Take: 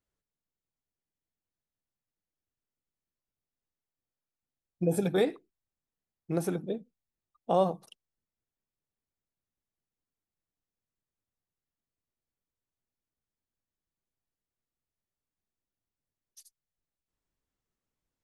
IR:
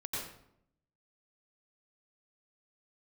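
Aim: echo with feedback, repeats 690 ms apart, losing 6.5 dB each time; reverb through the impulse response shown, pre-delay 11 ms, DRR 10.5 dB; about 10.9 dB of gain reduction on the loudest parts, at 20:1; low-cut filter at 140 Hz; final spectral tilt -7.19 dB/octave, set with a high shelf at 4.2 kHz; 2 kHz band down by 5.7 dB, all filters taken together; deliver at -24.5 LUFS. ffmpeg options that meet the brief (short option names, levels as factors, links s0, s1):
-filter_complex "[0:a]highpass=140,equalizer=f=2000:t=o:g=-5.5,highshelf=f=4200:g=-8.5,acompressor=threshold=0.0282:ratio=20,aecho=1:1:690|1380|2070|2760|3450|4140:0.473|0.222|0.105|0.0491|0.0231|0.0109,asplit=2[s0][s1];[1:a]atrim=start_sample=2205,adelay=11[s2];[s1][s2]afir=irnorm=-1:irlink=0,volume=0.224[s3];[s0][s3]amix=inputs=2:normalize=0,volume=6.31"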